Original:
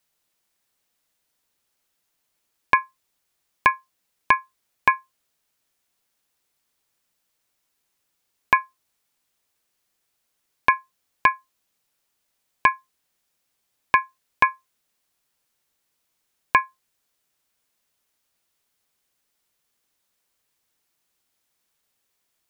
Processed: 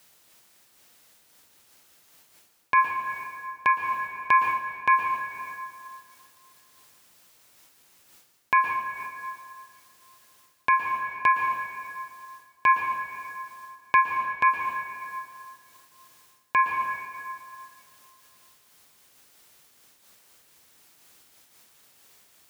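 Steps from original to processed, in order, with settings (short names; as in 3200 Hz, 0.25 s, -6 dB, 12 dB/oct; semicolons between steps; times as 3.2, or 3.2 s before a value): HPF 62 Hz; reverse; compressor 8:1, threshold -29 dBFS, peak gain reduction 18 dB; reverse; plate-style reverb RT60 2.4 s, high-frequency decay 0.65×, pre-delay 0.105 s, DRR 9 dB; maximiser +26 dB; noise-modulated level, depth 60%; gain -5.5 dB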